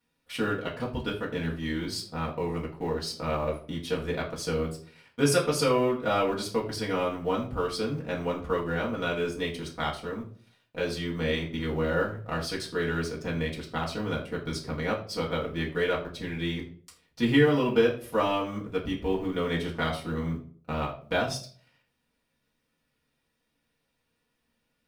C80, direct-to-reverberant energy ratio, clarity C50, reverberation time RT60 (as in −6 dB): 13.0 dB, −5.5 dB, 9.5 dB, 0.50 s